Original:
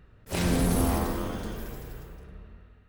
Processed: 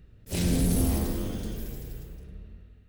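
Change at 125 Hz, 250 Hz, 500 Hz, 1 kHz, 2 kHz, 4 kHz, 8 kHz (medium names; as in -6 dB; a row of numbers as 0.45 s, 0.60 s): +1.5 dB, 0.0 dB, -3.5 dB, -9.5 dB, -6.0 dB, -1.0 dB, +1.0 dB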